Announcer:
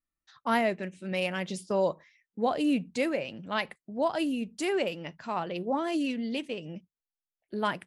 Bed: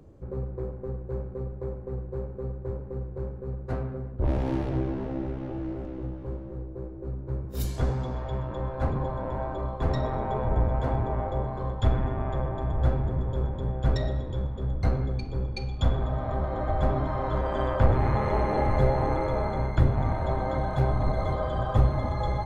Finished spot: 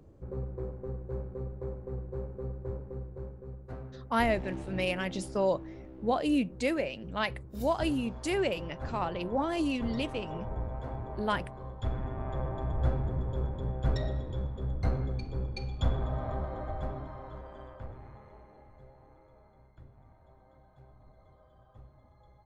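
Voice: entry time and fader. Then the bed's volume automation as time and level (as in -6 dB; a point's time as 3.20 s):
3.65 s, -1.0 dB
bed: 2.74 s -4 dB
3.73 s -11.5 dB
11.70 s -11.5 dB
12.48 s -4.5 dB
16.25 s -4.5 dB
18.71 s -32.5 dB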